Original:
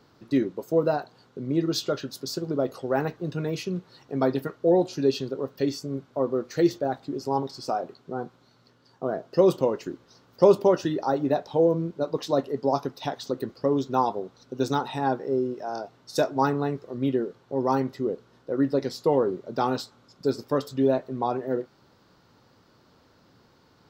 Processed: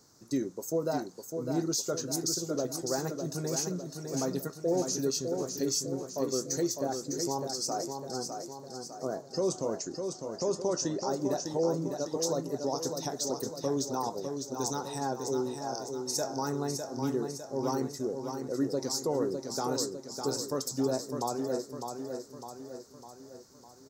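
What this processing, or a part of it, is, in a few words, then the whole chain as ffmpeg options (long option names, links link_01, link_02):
over-bright horn tweeter: -filter_complex "[0:a]asettb=1/sr,asplit=3[link_01][link_02][link_03];[link_01]atrim=end=9.224[link_04];[link_02]atrim=start=9.22:end=11.07,asetpts=PTS-STARTPTS,afade=type=in:duration=0.004:curve=qsin,afade=type=out:start_time=1.846:duration=0.004:curve=qsin,lowpass=frequency=7500:width=0.5412,lowpass=frequency=7500:width=1.3066[link_05];[link_03]atrim=start=11.066[link_06];[link_04][link_05]acrossfade=duration=0.004:curve1=hsin:curve2=qsin[link_07];[link_07][link_06]acrossfade=duration=0.004:curve1=qsin:curve2=hsin,highshelf=frequency=4500:width_type=q:width=3:gain=14,alimiter=limit=-15dB:level=0:latency=1:release=85,aecho=1:1:604|1208|1812|2416|3020|3624:0.501|0.261|0.136|0.0705|0.0366|0.0191,volume=-6dB"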